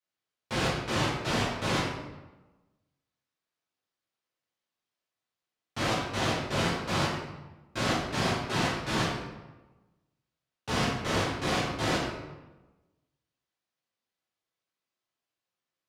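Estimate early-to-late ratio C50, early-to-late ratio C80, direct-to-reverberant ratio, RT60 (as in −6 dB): 0.5 dB, 3.5 dB, −10.0 dB, 1.1 s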